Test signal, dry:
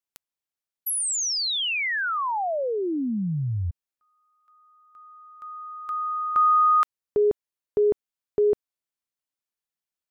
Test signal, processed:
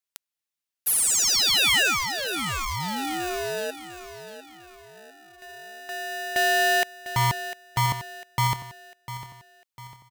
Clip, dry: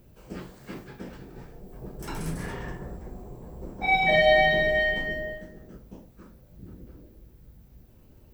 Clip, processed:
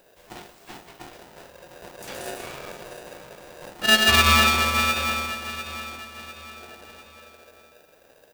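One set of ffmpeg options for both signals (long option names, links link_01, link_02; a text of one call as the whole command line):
ffmpeg -i in.wav -af "highshelf=frequency=1700:width_type=q:width=1.5:gain=6,aeval=exprs='0.501*(cos(1*acos(clip(val(0)/0.501,-1,1)))-cos(1*PI/2))+0.00398*(cos(2*acos(clip(val(0)/0.501,-1,1)))-cos(2*PI/2))+0.0251*(cos(7*acos(clip(val(0)/0.501,-1,1)))-cos(7*PI/2))':channel_layout=same,aecho=1:1:700|1400|2100|2800:0.237|0.102|0.0438|0.0189,aeval=exprs='val(0)*sgn(sin(2*PI*540*n/s))':channel_layout=same" out.wav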